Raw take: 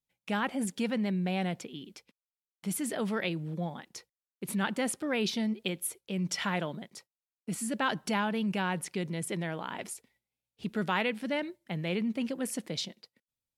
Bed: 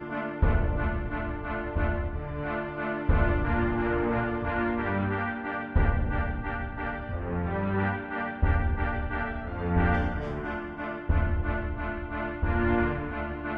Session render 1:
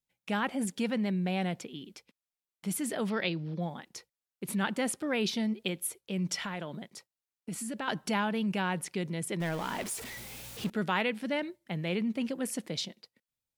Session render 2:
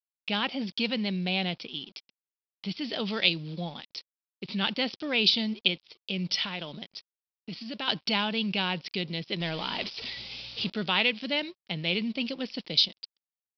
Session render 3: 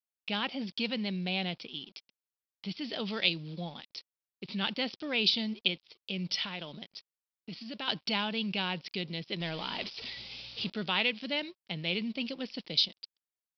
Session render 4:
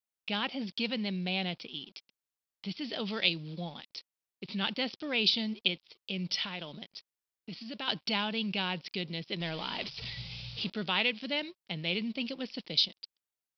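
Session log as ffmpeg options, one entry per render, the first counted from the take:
-filter_complex "[0:a]asettb=1/sr,asplit=3[s0][s1][s2];[s0]atrim=end=3.104[s3];[s1]atrim=start=3.1:end=3.61,asetpts=PTS-STARTPTS,afade=t=in:d=0.004:c=qsin,afade=t=out:st=0.506:d=0.004:c=qsin,highshelf=f=6400:t=q:w=3:g=-9.5[s4];[s2]atrim=start=3.606[s5];[s3][s4]acrossfade=d=0.004:c1=hsin:c2=qsin[s6];[s6][s5]acrossfade=d=0.004:c1=qsin:c2=hsin,asettb=1/sr,asplit=3[s7][s8][s9];[s7]atrim=end=6.364[s10];[s8]atrim=start=6.36:end=7.88,asetpts=PTS-STARTPTS,afade=t=in:d=0.004:c=qsin,afade=t=out:st=1.516:d=0.004:c=qsin,acompressor=threshold=0.02:ratio=3:attack=3.2:release=140:knee=1:detection=peak[s11];[s9]atrim=start=7.876[s12];[s10][s11]acrossfade=d=0.004:c1=hsin:c2=qsin[s13];[s13][s12]acrossfade=d=0.004:c1=qsin:c2=hsin,asettb=1/sr,asplit=3[s14][s15][s16];[s14]atrim=end=9.404[s17];[s15]atrim=start=9.4:end=10.7,asetpts=PTS-STARTPTS,afade=t=in:d=0.004:c=qsin,afade=t=out:st=1.296:d=0.004:c=qsin,aeval=exprs='val(0)+0.5*0.015*sgn(val(0))':c=same[s18];[s16]atrim=start=10.696[s19];[s17][s18]acrossfade=d=0.004:c1=hsin:c2=qsin[s20];[s20][s19]acrossfade=d=0.004:c1=qsin:c2=hsin"
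-af "aresample=11025,aeval=exprs='sgn(val(0))*max(abs(val(0))-0.00133,0)':c=same,aresample=44100,aexciter=amount=7:drive=1.7:freq=2500"
-af "volume=0.631"
-filter_complex "[0:a]asettb=1/sr,asplit=3[s0][s1][s2];[s0]atrim=end=9.884[s3];[s1]atrim=start=9.88:end=10.59,asetpts=PTS-STARTPTS,afade=t=in:d=0.004:c=qsin,afade=t=out:st=0.706:d=0.004:c=qsin,lowshelf=f=200:t=q:w=3:g=10.5[s4];[s2]atrim=start=10.586[s5];[s3][s4]acrossfade=d=0.004:c1=hsin:c2=qsin[s6];[s6][s5]acrossfade=d=0.004:c1=qsin:c2=hsin"

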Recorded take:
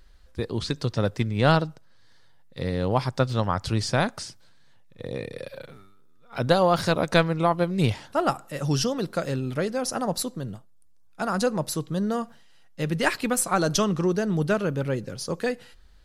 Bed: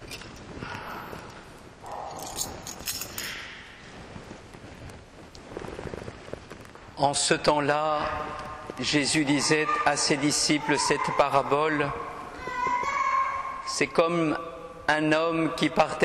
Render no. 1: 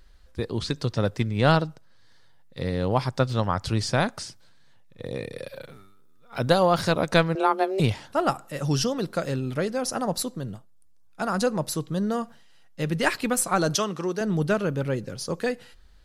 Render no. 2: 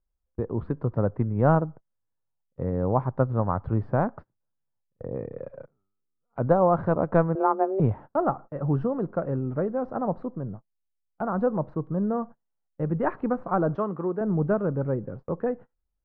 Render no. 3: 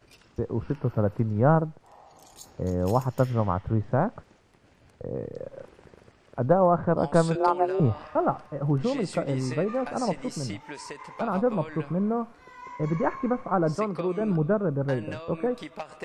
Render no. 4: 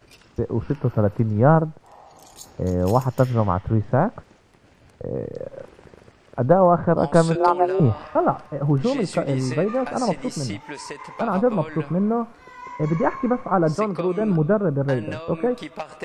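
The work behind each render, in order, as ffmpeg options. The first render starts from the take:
-filter_complex "[0:a]asettb=1/sr,asplit=3[s0][s1][s2];[s0]atrim=end=5.044[s3];[s1]atrim=start=5.04:end=6.66,asetpts=PTS-STARTPTS,afade=t=in:d=0.004:c=qsin,afade=t=out:st=1.616:d=0.004:c=qsin,highshelf=f=8400:g=5.5[s4];[s2]atrim=start=6.656[s5];[s3][s4]acrossfade=d=0.004:c1=hsin:c2=qsin[s6];[s6][s5]acrossfade=d=0.004:c1=qsin:c2=hsin,asettb=1/sr,asplit=3[s7][s8][s9];[s7]atrim=end=7.354[s10];[s8]atrim=start=7.35:end=7.8,asetpts=PTS-STARTPTS,afade=t=in:d=0.004:c=qsin,afade=t=out:st=0.446:d=0.004:c=qsin,afreqshift=190[s11];[s9]atrim=start=7.796[s12];[s10][s11]acrossfade=d=0.004:c1=hsin:c2=qsin[s13];[s13][s12]acrossfade=d=0.004:c1=qsin:c2=hsin,asettb=1/sr,asplit=3[s14][s15][s16];[s14]atrim=end=13.754[s17];[s15]atrim=start=13.75:end=14.21,asetpts=PTS-STARTPTS,afade=t=in:d=0.004:c=qsin,afade=t=out:st=0.456:d=0.004:c=qsin,highpass=f=440:p=1[s18];[s16]atrim=start=14.206[s19];[s17][s18]acrossfade=d=0.004:c1=hsin:c2=qsin[s20];[s20][s19]acrossfade=d=0.004:c1=qsin:c2=hsin"
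-af "lowpass=f=1200:w=0.5412,lowpass=f=1200:w=1.3066,agate=range=0.0447:threshold=0.0112:ratio=16:detection=peak"
-filter_complex "[1:a]volume=0.168[s0];[0:a][s0]amix=inputs=2:normalize=0"
-af "volume=1.78"

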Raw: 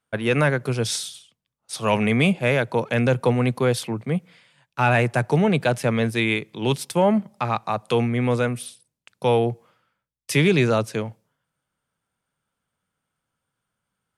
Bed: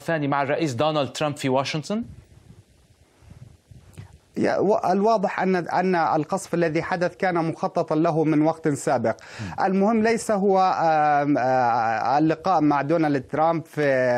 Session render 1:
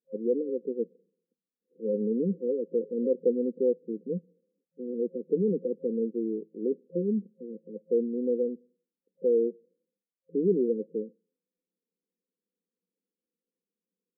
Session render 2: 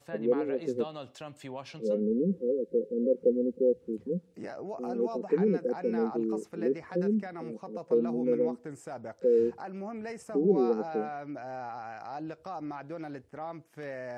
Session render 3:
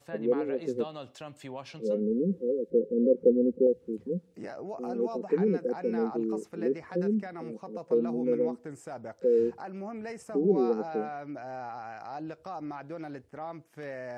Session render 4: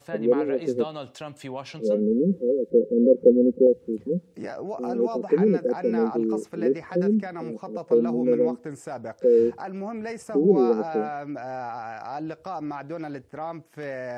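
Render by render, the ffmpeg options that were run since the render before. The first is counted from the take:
-af "aemphasis=mode=production:type=riaa,afftfilt=real='re*between(b*sr/4096,170,530)':imag='im*between(b*sr/4096,170,530)':win_size=4096:overlap=0.75"
-filter_complex "[1:a]volume=0.112[s0];[0:a][s0]amix=inputs=2:normalize=0"
-filter_complex "[0:a]asettb=1/sr,asplit=3[s0][s1][s2];[s0]atrim=end=2.704[s3];[s1]atrim=start=2.7:end=3.67,asetpts=PTS-STARTPTS,afade=t=in:d=0.004:c=qsin,afade=t=out:st=0.966:d=0.004:c=qsin,tiltshelf=f=970:g=5[s4];[s2]atrim=start=3.666[s5];[s3][s4]acrossfade=d=0.004:c1=hsin:c2=qsin[s6];[s6][s5]acrossfade=d=0.004:c1=qsin:c2=hsin"
-af "volume=2"

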